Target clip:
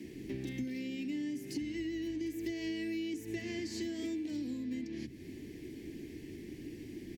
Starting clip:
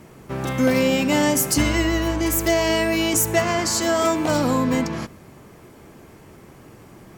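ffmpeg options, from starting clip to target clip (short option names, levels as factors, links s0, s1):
-filter_complex "[0:a]bandreject=f=60:t=h:w=6,bandreject=f=120:t=h:w=6,acrossover=split=3000[s0][s1];[s1]acompressor=threshold=0.0355:ratio=4:attack=1:release=60[s2];[s0][s2]amix=inputs=2:normalize=0,firequalizer=gain_entry='entry(180,0);entry(300,10);entry(550,-15);entry(1300,-30);entry(1800,-1);entry(4600,1);entry(7600,-6)':delay=0.05:min_phase=1,acompressor=threshold=0.0224:ratio=12,acrossover=split=170[s3][s4];[s3]adelay=40[s5];[s5][s4]amix=inputs=2:normalize=0,volume=0.794"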